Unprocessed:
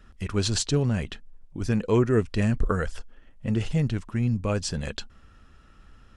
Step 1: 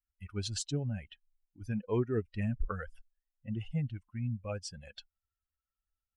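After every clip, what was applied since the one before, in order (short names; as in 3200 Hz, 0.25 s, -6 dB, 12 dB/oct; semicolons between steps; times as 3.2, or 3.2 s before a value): per-bin expansion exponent 2; gain -7.5 dB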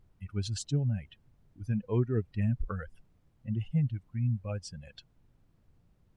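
added noise brown -64 dBFS; bell 130 Hz +8.5 dB 1.6 oct; gain -2 dB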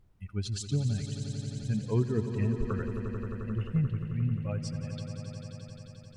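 swelling echo 88 ms, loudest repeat 5, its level -12 dB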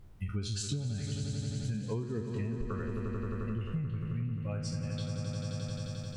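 spectral trails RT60 0.43 s; compressor 12:1, threshold -39 dBFS, peak gain reduction 18.5 dB; gain +7.5 dB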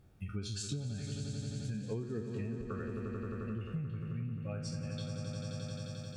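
notch comb 1000 Hz; gain -2 dB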